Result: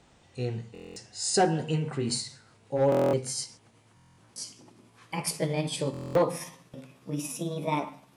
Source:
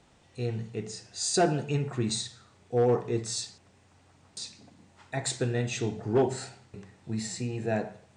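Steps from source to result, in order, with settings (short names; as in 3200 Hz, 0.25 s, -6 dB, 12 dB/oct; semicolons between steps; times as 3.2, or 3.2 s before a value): gliding pitch shift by +6 st starting unshifted; stuck buffer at 0.73/2.9/3.95/5.92, samples 1024, times 9; gain +1.5 dB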